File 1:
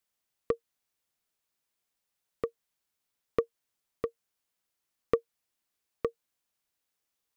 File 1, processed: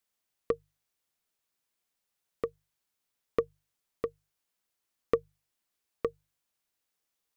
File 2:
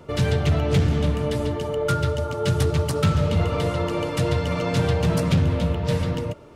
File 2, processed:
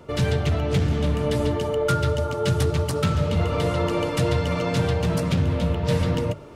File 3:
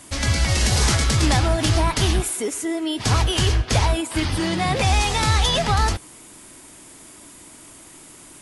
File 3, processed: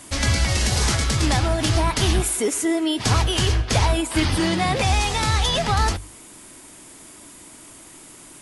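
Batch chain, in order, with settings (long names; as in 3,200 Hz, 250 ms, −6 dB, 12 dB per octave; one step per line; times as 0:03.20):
mains-hum notches 50/100/150 Hz
speech leveller within 4 dB 0.5 s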